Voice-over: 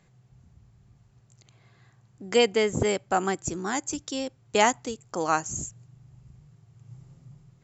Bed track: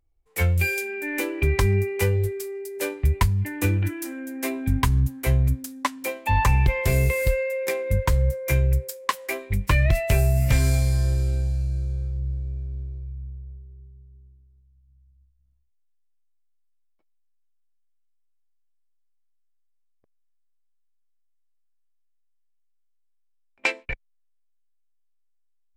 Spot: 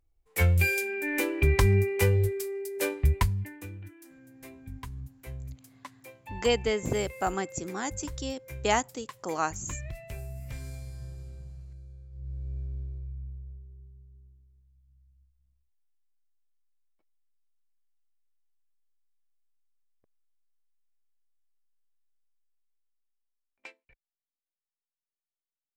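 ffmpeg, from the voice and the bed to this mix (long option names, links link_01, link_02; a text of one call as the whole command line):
ffmpeg -i stem1.wav -i stem2.wav -filter_complex "[0:a]adelay=4100,volume=-4.5dB[link_01];[1:a]volume=14.5dB,afade=type=out:start_time=2.98:duration=0.67:silence=0.11885,afade=type=in:start_time=12.1:duration=0.49:silence=0.158489,afade=type=out:start_time=22.16:duration=1.62:silence=0.0375837[link_02];[link_01][link_02]amix=inputs=2:normalize=0" out.wav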